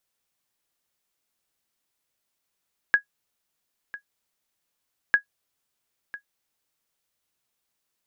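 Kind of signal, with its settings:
ping with an echo 1,660 Hz, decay 0.10 s, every 2.20 s, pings 2, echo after 1.00 s, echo −18 dB −8.5 dBFS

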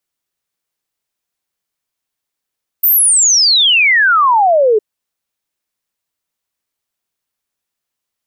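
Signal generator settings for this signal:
exponential sine sweep 15,000 Hz → 410 Hz 1.96 s −7 dBFS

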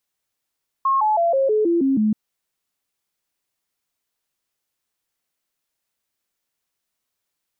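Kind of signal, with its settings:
stepped sweep 1,080 Hz down, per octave 3, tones 8, 0.16 s, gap 0.00 s −15 dBFS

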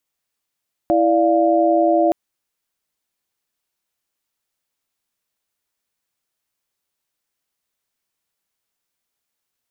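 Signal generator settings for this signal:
held notes E4/D5/F5 sine, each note −17 dBFS 1.22 s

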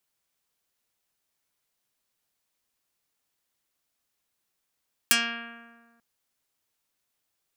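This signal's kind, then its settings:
Karplus-Strong string A#3, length 0.89 s, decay 1.62 s, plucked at 0.47, dark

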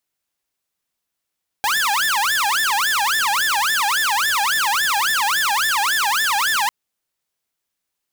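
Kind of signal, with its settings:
siren wail 797–1,780 Hz 3.6 per second saw −14 dBFS 5.05 s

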